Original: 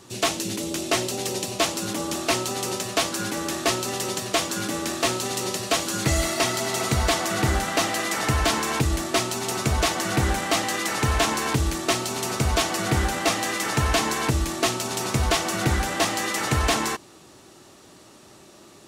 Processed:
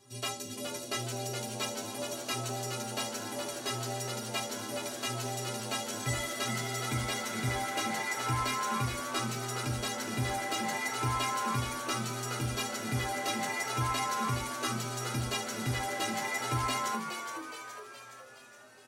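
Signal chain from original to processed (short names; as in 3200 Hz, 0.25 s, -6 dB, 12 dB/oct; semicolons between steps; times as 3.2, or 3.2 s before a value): metallic resonator 120 Hz, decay 0.38 s, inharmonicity 0.03; frequency-shifting echo 0.418 s, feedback 54%, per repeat +100 Hz, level -7 dB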